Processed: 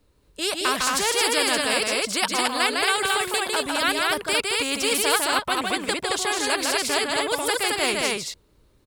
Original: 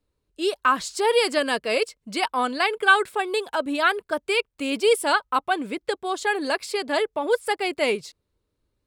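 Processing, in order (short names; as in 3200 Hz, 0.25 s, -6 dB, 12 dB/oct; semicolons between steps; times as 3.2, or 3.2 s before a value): loudspeakers at several distances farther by 53 m -6 dB, 76 m -3 dB; spectral compressor 2:1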